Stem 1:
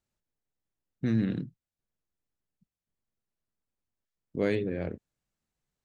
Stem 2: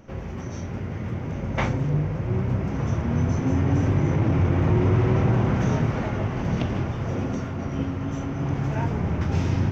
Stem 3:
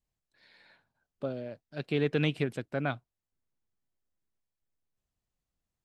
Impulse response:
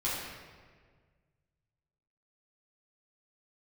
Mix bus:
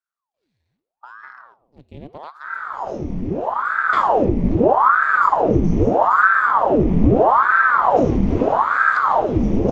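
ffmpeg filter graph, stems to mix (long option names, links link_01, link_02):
-filter_complex "[0:a]acompressor=threshold=-30dB:ratio=6,volume=-4.5dB[link_01];[1:a]acompressor=threshold=-22dB:ratio=6,lowshelf=frequency=420:gain=10,adelay=2350,volume=1dB,asplit=2[link_02][link_03];[link_03]volume=-10.5dB[link_04];[2:a]aeval=exprs='if(lt(val(0),0),0.251*val(0),val(0))':channel_layout=same,lowshelf=frequency=450:gain=10,volume=-12.5dB,asplit=3[link_05][link_06][link_07];[link_06]volume=-21dB[link_08];[link_07]apad=whole_len=532226[link_09];[link_02][link_09]sidechaincompress=threshold=-49dB:ratio=8:attack=16:release=813[link_10];[3:a]atrim=start_sample=2205[link_11];[link_04][link_08]amix=inputs=2:normalize=0[link_12];[link_12][link_11]afir=irnorm=-1:irlink=0[link_13];[link_01][link_10][link_05][link_13]amix=inputs=4:normalize=0,equalizer=frequency=1400:width=1.9:gain=-11.5,aeval=exprs='val(0)*sin(2*PI*770*n/s+770*0.9/0.79*sin(2*PI*0.79*n/s))':channel_layout=same"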